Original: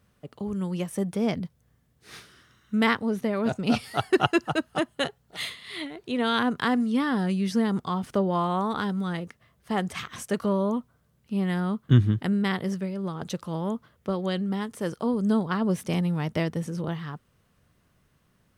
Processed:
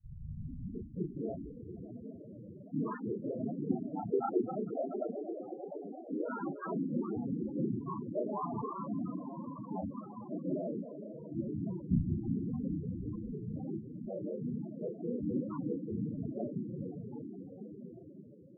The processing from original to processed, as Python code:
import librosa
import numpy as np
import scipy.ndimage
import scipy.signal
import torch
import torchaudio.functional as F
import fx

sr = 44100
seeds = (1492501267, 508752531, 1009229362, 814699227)

p1 = fx.tape_start_head(x, sr, length_s=1.11)
p2 = p1 + fx.echo_swell(p1, sr, ms=116, loudest=5, wet_db=-13.5, dry=0)
p3 = fx.whisperise(p2, sr, seeds[0])
p4 = scipy.signal.sosfilt(scipy.signal.butter(2, 1600.0, 'lowpass', fs=sr, output='sos'), p3)
p5 = fx.low_shelf(p4, sr, hz=180.0, db=-8.5)
p6 = fx.doubler(p5, sr, ms=33.0, db=-3)
p7 = fx.spec_topn(p6, sr, count=8)
y = p7 * librosa.db_to_amplitude(-8.0)